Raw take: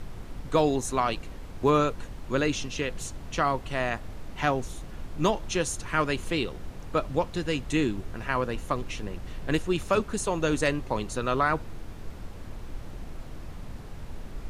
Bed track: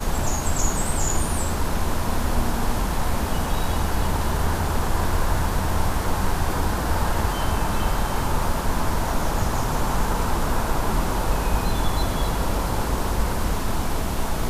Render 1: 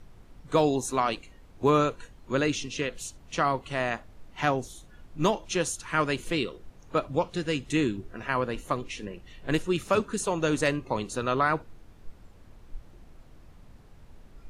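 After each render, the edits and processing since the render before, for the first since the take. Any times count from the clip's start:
noise reduction from a noise print 12 dB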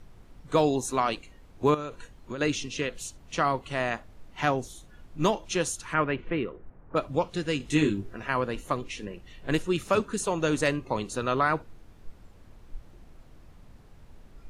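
0:01.74–0:02.41: downward compressor 16 to 1, threshold −30 dBFS
0:05.93–0:06.95: low-pass filter 2,900 Hz → 1,600 Hz 24 dB per octave
0:07.58–0:08.16: double-tracking delay 20 ms −2.5 dB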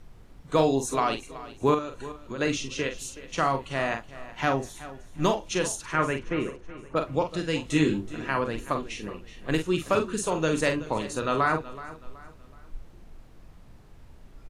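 double-tracking delay 44 ms −7 dB
repeating echo 375 ms, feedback 37%, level −16.5 dB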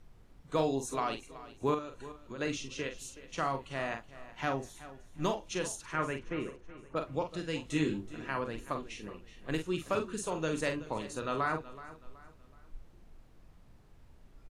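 level −8 dB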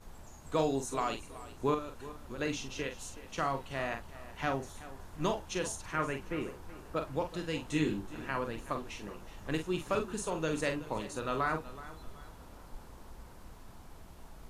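mix in bed track −28.5 dB

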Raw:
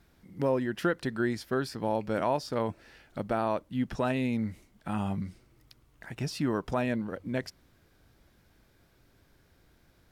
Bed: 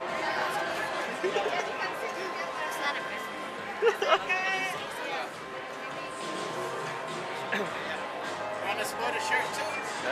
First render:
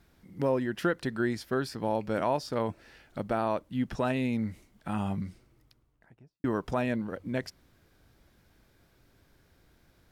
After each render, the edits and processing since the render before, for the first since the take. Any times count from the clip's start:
0:05.23–0:06.44: fade out and dull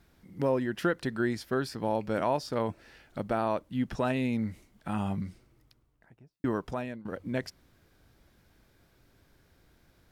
0:06.49–0:07.05: fade out, to −17.5 dB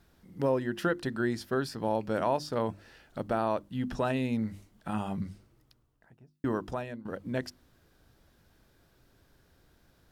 parametric band 2,200 Hz −5.5 dB 0.25 octaves
mains-hum notches 50/100/150/200/250/300/350 Hz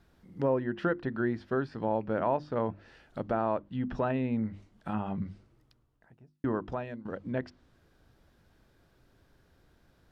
high-shelf EQ 4,600 Hz −7.5 dB
treble cut that deepens with the level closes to 2,300 Hz, closed at −28.5 dBFS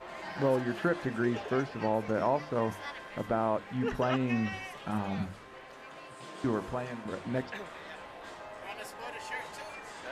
mix in bed −11 dB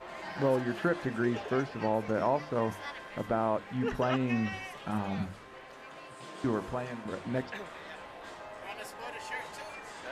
no processing that can be heard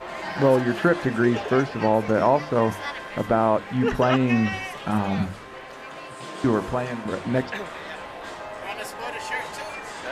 level +9.5 dB

